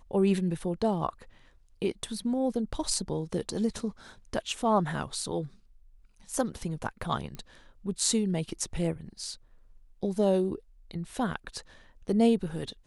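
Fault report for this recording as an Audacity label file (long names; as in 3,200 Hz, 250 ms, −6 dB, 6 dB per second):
7.350000	7.350000	click −26 dBFS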